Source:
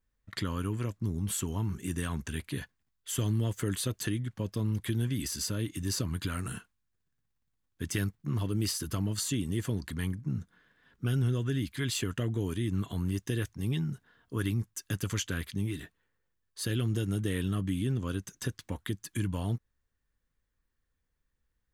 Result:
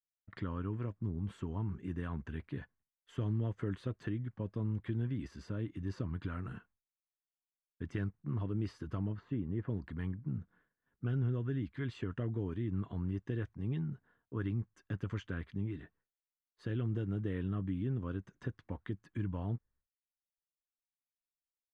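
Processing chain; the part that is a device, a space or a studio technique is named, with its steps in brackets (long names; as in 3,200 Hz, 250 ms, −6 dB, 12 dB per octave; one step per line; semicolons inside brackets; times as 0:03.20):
0:09.12–0:09.70: low-pass filter 1,900 Hz 12 dB per octave
hearing-loss simulation (low-pass filter 1,600 Hz 12 dB per octave; downward expander −58 dBFS)
level −5 dB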